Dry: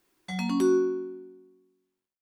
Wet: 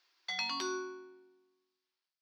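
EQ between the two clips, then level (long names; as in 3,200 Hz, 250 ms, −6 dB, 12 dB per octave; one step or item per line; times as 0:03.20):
high-pass filter 970 Hz 12 dB per octave
high shelf with overshoot 6,700 Hz −12.5 dB, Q 3
0.0 dB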